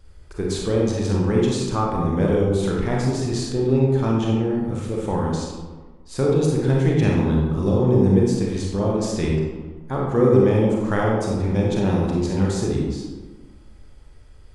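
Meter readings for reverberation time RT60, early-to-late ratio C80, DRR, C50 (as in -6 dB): 1.3 s, 3.0 dB, -3.5 dB, -0.5 dB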